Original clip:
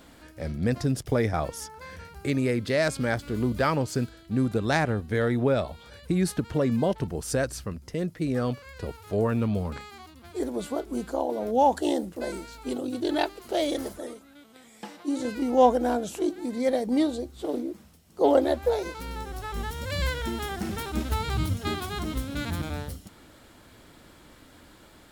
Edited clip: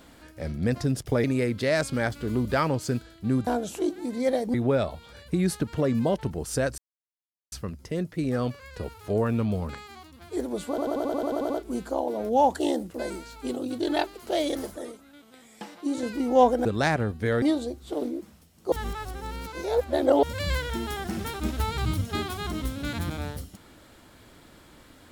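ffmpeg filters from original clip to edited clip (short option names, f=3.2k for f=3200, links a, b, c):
-filter_complex "[0:a]asplit=18[a][b][c][d][e][f][g][h][i][j][k][l][m][n][o][p][q][r];[a]atrim=end=1.242[s];[b]atrim=start=2.308:end=4.542[t];[c]atrim=start=15.868:end=16.942[u];[d]atrim=start=5.308:end=7.55,asetpts=PTS-STARTPTS,afade=t=out:st=2.238:d=0.004:c=hsin,apad=pad_dur=0.74[v];[e]atrim=start=7.55:end=10.812,asetpts=PTS-STARTPTS,afade=t=in:d=0.004:c=hsin[w];[f]atrim=start=10.718:end=10.812[x];[g]atrim=start=10.718:end=10.812[y];[h]atrim=start=10.718:end=10.812[z];[i]atrim=start=10.718:end=10.812[aa];[j]atrim=start=10.718:end=10.812[ab];[k]atrim=start=10.718:end=10.812[ac];[l]atrim=start=10.718:end=10.812[ad];[m]atrim=start=10.718:end=10.812[ae];[n]atrim=start=10.718:end=15.872[af];[o]atrim=start=4.538:end=5.312[ag];[p]atrim=start=16.938:end=18.242[ah];[q]atrim=start=18.238:end=19.752,asetpts=PTS-STARTPTS,areverse[ai];[r]atrim=start=19.748[aj];[s][t]acrossfade=d=0.004:c1=hsin:c2=hsin[ak];[ak][u]acrossfade=d=0.004:c1=hsin:c2=hsin[al];[v][w]concat=n=2:v=0:a=1[am];[al][am]acrossfade=d=0.004:c1=hsin:c2=hsin[an];[an][x]acrossfade=d=0.004:c1=hsin:c2=hsin[ao];[ao][y]acrossfade=d=0.004:c1=hsin:c2=hsin[ap];[ap][z]acrossfade=d=0.004:c1=hsin:c2=hsin[aq];[aq][aa]acrossfade=d=0.004:c1=hsin:c2=hsin[ar];[ar][ab]acrossfade=d=0.004:c1=hsin:c2=hsin[as];[as][ac]acrossfade=d=0.004:c1=hsin:c2=hsin[at];[at][ad]acrossfade=d=0.004:c1=hsin:c2=hsin[au];[au][ae]acrossfade=d=0.004:c1=hsin:c2=hsin[av];[av][af]acrossfade=d=0.004:c1=hsin:c2=hsin[aw];[aw][ag]acrossfade=d=0.004:c1=hsin:c2=hsin[ax];[ax][ah]acrossfade=d=0.004:c1=hsin:c2=hsin[ay];[ay][ai]acrossfade=d=0.004:c1=hsin:c2=hsin[az];[az][aj]acrossfade=d=0.004:c1=hsin:c2=hsin"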